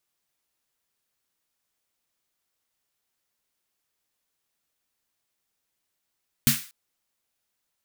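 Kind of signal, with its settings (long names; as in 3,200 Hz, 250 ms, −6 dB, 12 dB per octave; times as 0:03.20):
synth snare length 0.24 s, tones 140 Hz, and 230 Hz, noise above 1,400 Hz, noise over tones 0 dB, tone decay 0.19 s, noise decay 0.39 s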